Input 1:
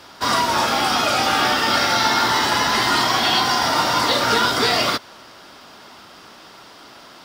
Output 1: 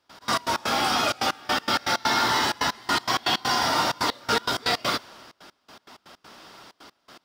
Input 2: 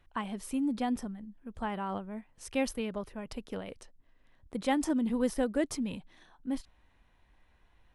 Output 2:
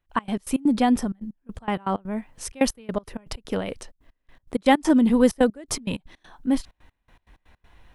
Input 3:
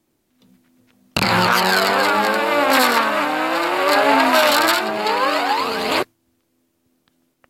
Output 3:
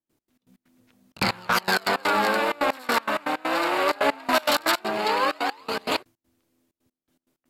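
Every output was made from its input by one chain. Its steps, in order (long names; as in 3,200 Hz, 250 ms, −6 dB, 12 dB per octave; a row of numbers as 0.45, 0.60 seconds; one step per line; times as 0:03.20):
gate pattern ".x.x.x.xxxxx.x." 161 BPM −24 dB
soft clipping −5 dBFS
loudness normalisation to −24 LKFS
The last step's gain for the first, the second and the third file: −4.0, +12.0, −4.0 decibels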